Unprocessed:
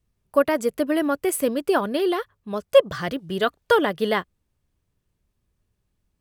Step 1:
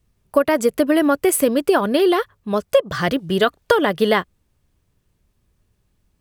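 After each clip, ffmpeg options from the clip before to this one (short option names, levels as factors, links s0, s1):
-af "acompressor=threshold=0.112:ratio=10,volume=2.51"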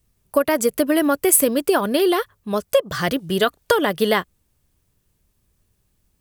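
-af "highshelf=f=6300:g=11,volume=0.794"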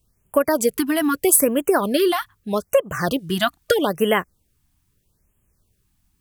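-af "afftfilt=real='re*(1-between(b*sr/1024,430*pow(4800/430,0.5+0.5*sin(2*PI*0.79*pts/sr))/1.41,430*pow(4800/430,0.5+0.5*sin(2*PI*0.79*pts/sr))*1.41))':imag='im*(1-between(b*sr/1024,430*pow(4800/430,0.5+0.5*sin(2*PI*0.79*pts/sr))/1.41,430*pow(4800/430,0.5+0.5*sin(2*PI*0.79*pts/sr))*1.41))':win_size=1024:overlap=0.75"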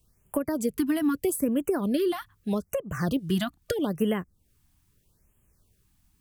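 -filter_complex "[0:a]acrossover=split=300[s0][s1];[s1]acompressor=threshold=0.02:ratio=4[s2];[s0][s2]amix=inputs=2:normalize=0"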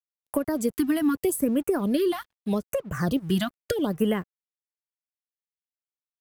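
-af "aeval=exprs='sgn(val(0))*max(abs(val(0))-0.00211,0)':c=same,volume=1.26"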